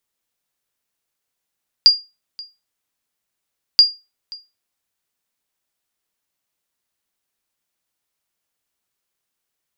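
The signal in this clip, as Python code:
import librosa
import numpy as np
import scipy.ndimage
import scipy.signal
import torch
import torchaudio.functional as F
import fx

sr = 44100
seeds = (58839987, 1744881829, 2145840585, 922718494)

y = fx.sonar_ping(sr, hz=4810.0, decay_s=0.25, every_s=1.93, pings=2, echo_s=0.53, echo_db=-24.0, level_db=-1.5)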